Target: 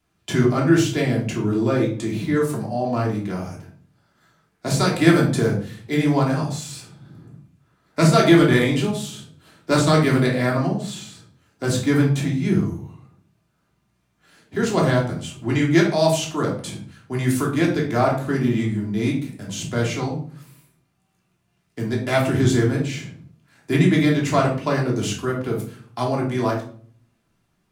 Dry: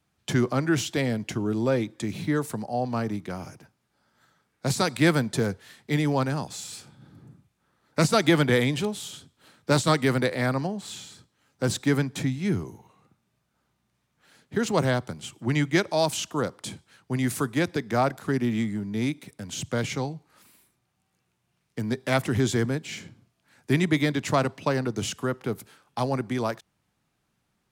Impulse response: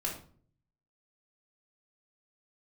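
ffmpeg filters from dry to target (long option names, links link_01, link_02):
-filter_complex "[1:a]atrim=start_sample=2205[link_01];[0:a][link_01]afir=irnorm=-1:irlink=0,volume=1dB"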